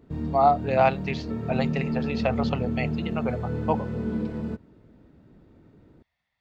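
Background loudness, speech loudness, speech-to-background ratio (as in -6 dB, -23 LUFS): -30.0 LUFS, -27.0 LUFS, 3.0 dB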